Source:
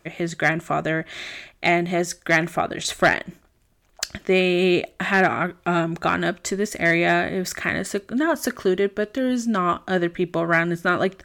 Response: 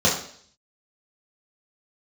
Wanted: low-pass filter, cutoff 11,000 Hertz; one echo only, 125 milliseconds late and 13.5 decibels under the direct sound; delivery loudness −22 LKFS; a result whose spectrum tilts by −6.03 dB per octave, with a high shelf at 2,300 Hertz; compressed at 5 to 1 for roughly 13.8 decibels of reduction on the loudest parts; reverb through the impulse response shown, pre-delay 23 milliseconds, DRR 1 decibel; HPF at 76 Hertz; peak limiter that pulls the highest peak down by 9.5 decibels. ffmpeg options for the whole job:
-filter_complex "[0:a]highpass=76,lowpass=11000,highshelf=frequency=2300:gain=-9,acompressor=threshold=-31dB:ratio=5,alimiter=level_in=2.5dB:limit=-24dB:level=0:latency=1,volume=-2.5dB,aecho=1:1:125:0.211,asplit=2[link_01][link_02];[1:a]atrim=start_sample=2205,adelay=23[link_03];[link_02][link_03]afir=irnorm=-1:irlink=0,volume=-19dB[link_04];[link_01][link_04]amix=inputs=2:normalize=0,volume=10dB"

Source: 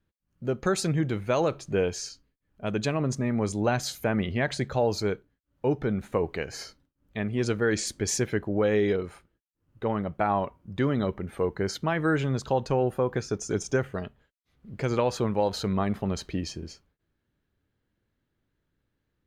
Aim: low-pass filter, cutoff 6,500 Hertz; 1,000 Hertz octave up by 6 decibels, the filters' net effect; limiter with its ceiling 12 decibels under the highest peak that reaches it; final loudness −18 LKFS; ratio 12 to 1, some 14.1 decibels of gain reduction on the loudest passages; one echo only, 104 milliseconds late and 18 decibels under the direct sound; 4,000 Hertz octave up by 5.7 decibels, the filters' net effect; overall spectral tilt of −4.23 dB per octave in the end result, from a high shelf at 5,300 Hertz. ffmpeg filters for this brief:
ffmpeg -i in.wav -af "lowpass=6500,equalizer=frequency=1000:width_type=o:gain=7.5,equalizer=frequency=4000:width_type=o:gain=4.5,highshelf=frequency=5300:gain=6.5,acompressor=threshold=-31dB:ratio=12,alimiter=level_in=6dB:limit=-24dB:level=0:latency=1,volume=-6dB,aecho=1:1:104:0.126,volume=22.5dB" out.wav

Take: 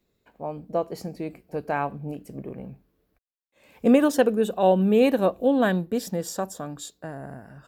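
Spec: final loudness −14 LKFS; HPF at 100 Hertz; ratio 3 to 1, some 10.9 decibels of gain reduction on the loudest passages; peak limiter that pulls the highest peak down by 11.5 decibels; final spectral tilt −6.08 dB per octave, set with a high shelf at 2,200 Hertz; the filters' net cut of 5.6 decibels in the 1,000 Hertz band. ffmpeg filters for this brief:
ffmpeg -i in.wav -af "highpass=100,equalizer=frequency=1000:width_type=o:gain=-7.5,highshelf=frequency=2200:gain=-6.5,acompressor=threshold=-29dB:ratio=3,volume=25dB,alimiter=limit=-4dB:level=0:latency=1" out.wav

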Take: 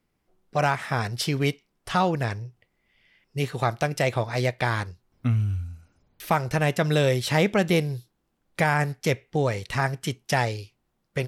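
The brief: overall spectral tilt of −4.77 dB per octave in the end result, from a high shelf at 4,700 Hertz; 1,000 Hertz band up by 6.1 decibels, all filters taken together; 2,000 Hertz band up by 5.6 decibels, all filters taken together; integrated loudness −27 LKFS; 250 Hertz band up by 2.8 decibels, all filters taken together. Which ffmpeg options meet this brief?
ffmpeg -i in.wav -af "equalizer=frequency=250:width_type=o:gain=4,equalizer=frequency=1000:width_type=o:gain=7,equalizer=frequency=2000:width_type=o:gain=5.5,highshelf=frequency=4700:gain=-6,volume=-5dB" out.wav

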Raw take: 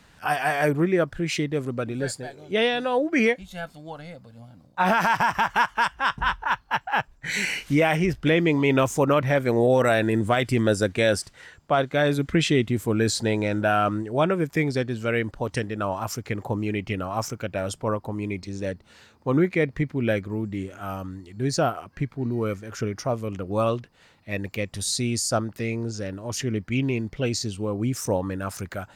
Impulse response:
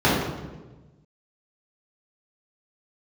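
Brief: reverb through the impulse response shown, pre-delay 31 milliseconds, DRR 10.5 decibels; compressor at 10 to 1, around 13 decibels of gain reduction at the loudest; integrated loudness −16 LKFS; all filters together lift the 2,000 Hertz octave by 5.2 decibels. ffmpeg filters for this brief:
-filter_complex "[0:a]equalizer=frequency=2000:width_type=o:gain=6.5,acompressor=threshold=-28dB:ratio=10,asplit=2[link_01][link_02];[1:a]atrim=start_sample=2205,adelay=31[link_03];[link_02][link_03]afir=irnorm=-1:irlink=0,volume=-32dB[link_04];[link_01][link_04]amix=inputs=2:normalize=0,volume=16dB"

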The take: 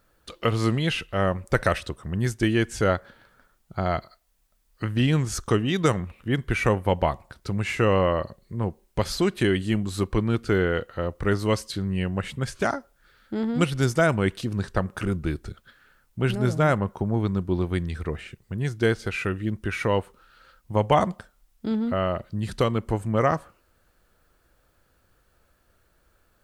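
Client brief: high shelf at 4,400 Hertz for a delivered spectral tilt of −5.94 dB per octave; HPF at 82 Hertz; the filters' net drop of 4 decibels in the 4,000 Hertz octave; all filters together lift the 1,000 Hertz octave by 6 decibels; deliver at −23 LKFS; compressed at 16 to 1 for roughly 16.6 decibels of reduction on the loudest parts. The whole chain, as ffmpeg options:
ffmpeg -i in.wav -af "highpass=82,equalizer=frequency=1000:width_type=o:gain=8.5,equalizer=frequency=4000:width_type=o:gain=-3,highshelf=frequency=4400:gain=-7,acompressor=threshold=-26dB:ratio=16,volume=10dB" out.wav

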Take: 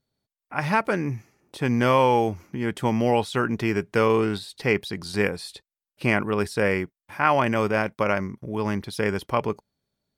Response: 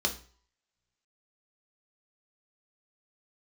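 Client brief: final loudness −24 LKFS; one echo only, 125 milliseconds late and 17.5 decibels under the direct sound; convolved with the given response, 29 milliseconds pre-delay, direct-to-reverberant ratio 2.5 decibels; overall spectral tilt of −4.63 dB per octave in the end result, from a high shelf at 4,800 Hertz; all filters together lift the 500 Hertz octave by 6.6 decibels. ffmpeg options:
-filter_complex "[0:a]equalizer=frequency=500:width_type=o:gain=7.5,highshelf=frequency=4800:gain=7.5,aecho=1:1:125:0.133,asplit=2[link_01][link_02];[1:a]atrim=start_sample=2205,adelay=29[link_03];[link_02][link_03]afir=irnorm=-1:irlink=0,volume=-10dB[link_04];[link_01][link_04]amix=inputs=2:normalize=0,volume=-6dB"

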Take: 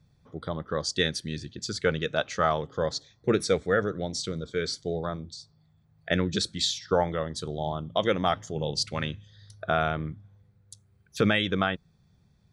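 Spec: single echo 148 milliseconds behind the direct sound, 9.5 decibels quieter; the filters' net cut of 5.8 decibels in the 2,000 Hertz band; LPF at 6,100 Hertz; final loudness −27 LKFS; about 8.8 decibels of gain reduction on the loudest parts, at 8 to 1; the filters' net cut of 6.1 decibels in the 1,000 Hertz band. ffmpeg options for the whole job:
ffmpeg -i in.wav -af "lowpass=6100,equalizer=frequency=1000:width_type=o:gain=-8,equalizer=frequency=2000:width_type=o:gain=-4.5,acompressor=threshold=-29dB:ratio=8,aecho=1:1:148:0.335,volume=8.5dB" out.wav

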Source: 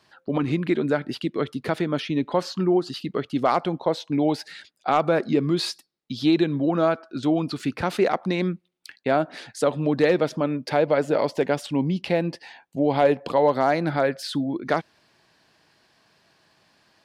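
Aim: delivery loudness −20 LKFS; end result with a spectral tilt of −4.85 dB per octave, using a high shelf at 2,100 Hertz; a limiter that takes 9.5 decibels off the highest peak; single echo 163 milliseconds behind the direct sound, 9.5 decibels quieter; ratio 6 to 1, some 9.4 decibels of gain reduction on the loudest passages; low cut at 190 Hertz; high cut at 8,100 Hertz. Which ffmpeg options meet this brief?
ffmpeg -i in.wav -af "highpass=190,lowpass=8100,highshelf=frequency=2100:gain=5,acompressor=threshold=-24dB:ratio=6,alimiter=limit=-20.5dB:level=0:latency=1,aecho=1:1:163:0.335,volume=11dB" out.wav

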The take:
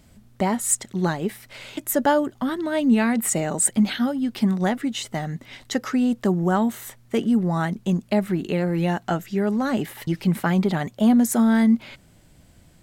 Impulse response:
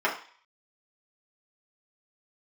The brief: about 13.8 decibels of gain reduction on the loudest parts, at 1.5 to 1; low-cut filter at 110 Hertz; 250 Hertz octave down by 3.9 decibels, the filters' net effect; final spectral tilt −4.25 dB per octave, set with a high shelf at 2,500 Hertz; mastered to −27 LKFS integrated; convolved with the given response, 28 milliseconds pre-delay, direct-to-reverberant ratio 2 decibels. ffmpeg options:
-filter_complex "[0:a]highpass=110,equalizer=frequency=250:width_type=o:gain=-4.5,highshelf=frequency=2500:gain=5,acompressor=threshold=-51dB:ratio=1.5,asplit=2[link_01][link_02];[1:a]atrim=start_sample=2205,adelay=28[link_03];[link_02][link_03]afir=irnorm=-1:irlink=0,volume=-16dB[link_04];[link_01][link_04]amix=inputs=2:normalize=0,volume=6.5dB"

